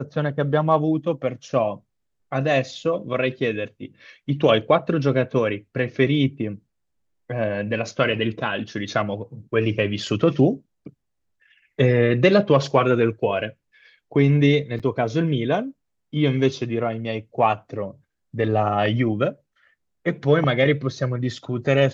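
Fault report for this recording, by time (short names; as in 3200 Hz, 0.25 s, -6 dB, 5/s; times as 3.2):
14.79–14.8 gap 7 ms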